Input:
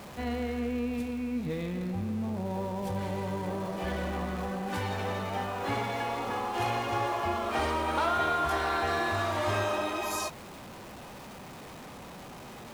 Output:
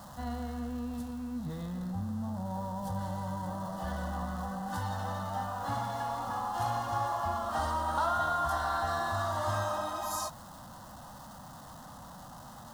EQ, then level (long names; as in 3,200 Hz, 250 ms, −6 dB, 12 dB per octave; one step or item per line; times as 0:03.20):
phaser with its sweep stopped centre 980 Hz, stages 4
0.0 dB